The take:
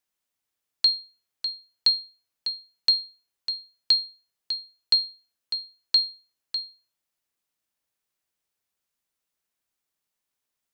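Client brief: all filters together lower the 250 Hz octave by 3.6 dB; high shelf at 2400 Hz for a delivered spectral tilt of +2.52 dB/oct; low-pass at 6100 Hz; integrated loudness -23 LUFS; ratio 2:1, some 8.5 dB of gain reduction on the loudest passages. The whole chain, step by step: LPF 6100 Hz; bell 250 Hz -5 dB; high shelf 2400 Hz +8 dB; compressor 2:1, threshold -26 dBFS; gain +4 dB

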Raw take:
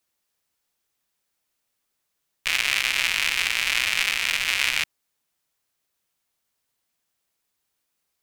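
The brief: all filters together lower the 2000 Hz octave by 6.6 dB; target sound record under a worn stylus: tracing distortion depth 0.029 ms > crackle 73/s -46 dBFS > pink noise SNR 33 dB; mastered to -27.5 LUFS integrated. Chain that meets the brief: bell 2000 Hz -8.5 dB; tracing distortion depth 0.029 ms; crackle 73/s -46 dBFS; pink noise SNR 33 dB; gain -2.5 dB

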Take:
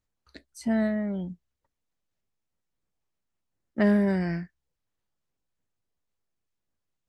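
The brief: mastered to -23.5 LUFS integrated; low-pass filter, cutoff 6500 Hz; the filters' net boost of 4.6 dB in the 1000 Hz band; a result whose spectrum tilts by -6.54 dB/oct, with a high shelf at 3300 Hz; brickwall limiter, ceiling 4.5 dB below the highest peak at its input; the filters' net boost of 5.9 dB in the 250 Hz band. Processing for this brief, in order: LPF 6500 Hz; bell 250 Hz +7.5 dB; bell 1000 Hz +5 dB; high shelf 3300 Hz +8 dB; limiter -13 dBFS

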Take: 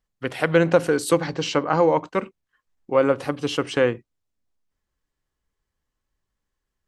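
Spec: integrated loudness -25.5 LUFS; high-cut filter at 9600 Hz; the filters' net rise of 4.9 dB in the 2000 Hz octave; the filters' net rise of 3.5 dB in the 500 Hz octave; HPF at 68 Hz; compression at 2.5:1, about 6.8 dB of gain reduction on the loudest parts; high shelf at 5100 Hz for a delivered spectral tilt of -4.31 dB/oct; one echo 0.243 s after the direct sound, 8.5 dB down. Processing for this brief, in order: HPF 68 Hz; LPF 9600 Hz; bell 500 Hz +3.5 dB; bell 2000 Hz +6 dB; high shelf 5100 Hz +4 dB; compressor 2.5:1, threshold -19 dBFS; echo 0.243 s -8.5 dB; gain -2.5 dB

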